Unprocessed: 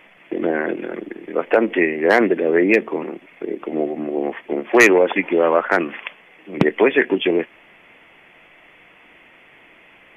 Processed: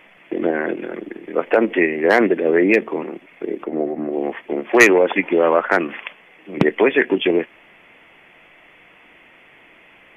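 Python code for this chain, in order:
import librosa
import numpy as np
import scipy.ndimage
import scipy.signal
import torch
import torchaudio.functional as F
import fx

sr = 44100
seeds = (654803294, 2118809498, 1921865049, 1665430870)

p1 = fx.band_shelf(x, sr, hz=4700.0, db=-10.0, octaves=2.3, at=(3.63, 4.12), fade=0.02)
p2 = fx.level_steps(p1, sr, step_db=9)
p3 = p1 + F.gain(torch.from_numpy(p2), -1.0).numpy()
y = F.gain(torch.from_numpy(p3), -3.5).numpy()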